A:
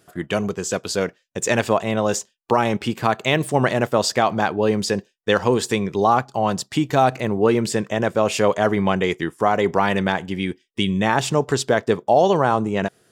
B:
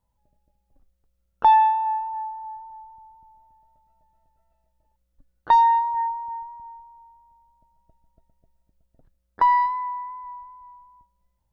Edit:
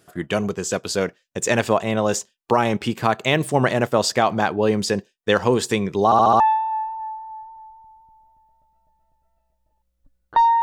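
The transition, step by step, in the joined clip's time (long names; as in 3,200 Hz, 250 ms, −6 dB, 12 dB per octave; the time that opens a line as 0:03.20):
A
0:06.05: stutter in place 0.07 s, 5 plays
0:06.40: continue with B from 0:01.54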